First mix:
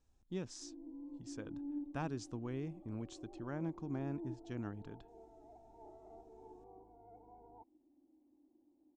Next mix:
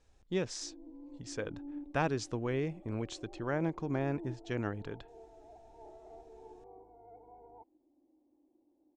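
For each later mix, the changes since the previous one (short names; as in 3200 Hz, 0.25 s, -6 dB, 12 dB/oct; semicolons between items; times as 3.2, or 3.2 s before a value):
speech +7.0 dB; master: add ten-band EQ 250 Hz -4 dB, 500 Hz +7 dB, 2000 Hz +7 dB, 4000 Hz +3 dB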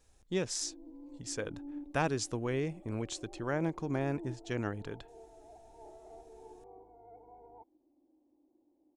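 master: remove air absorption 90 m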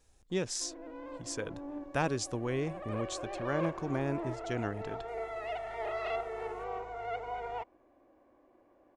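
background: remove vocal tract filter u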